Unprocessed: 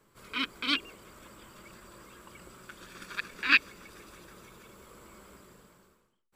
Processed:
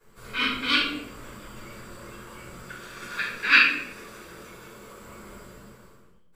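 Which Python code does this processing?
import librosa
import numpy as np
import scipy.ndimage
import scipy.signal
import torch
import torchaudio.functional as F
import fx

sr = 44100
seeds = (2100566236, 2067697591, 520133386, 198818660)

y = fx.low_shelf(x, sr, hz=130.0, db=-10.0, at=(2.62, 5.0))
y = fx.room_shoebox(y, sr, seeds[0], volume_m3=150.0, walls='mixed', distance_m=4.1)
y = y * librosa.db_to_amplitude(-5.0)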